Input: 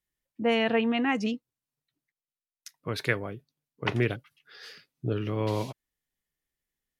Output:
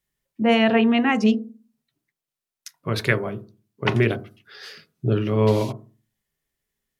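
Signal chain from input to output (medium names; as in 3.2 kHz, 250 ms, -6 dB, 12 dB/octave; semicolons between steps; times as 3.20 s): on a send: low-pass 1.2 kHz 24 dB/octave + reverberation RT60 0.35 s, pre-delay 4 ms, DRR 8 dB; on the sum: trim +6 dB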